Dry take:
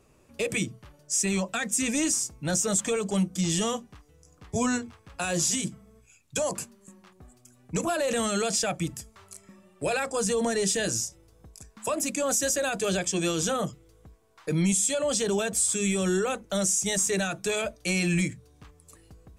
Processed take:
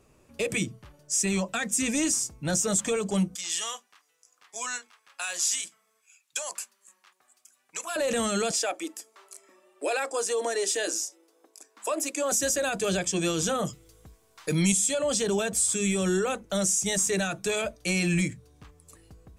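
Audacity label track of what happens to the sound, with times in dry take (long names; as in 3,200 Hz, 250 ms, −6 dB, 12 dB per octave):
3.350000	7.960000	high-pass filter 1,200 Hz
8.510000	12.320000	elliptic high-pass filter 300 Hz, stop band 60 dB
13.650000	14.720000	high-shelf EQ 2,600 Hz +10 dB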